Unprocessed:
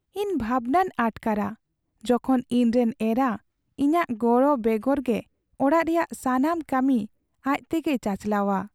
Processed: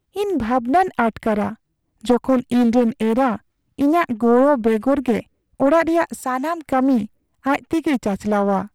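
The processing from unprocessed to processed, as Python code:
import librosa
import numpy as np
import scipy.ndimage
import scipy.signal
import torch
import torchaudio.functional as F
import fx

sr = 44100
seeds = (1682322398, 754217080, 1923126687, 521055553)

y = fx.highpass(x, sr, hz=700.0, slope=6, at=(6.21, 6.67))
y = fx.doppler_dist(y, sr, depth_ms=0.39)
y = y * 10.0 ** (5.5 / 20.0)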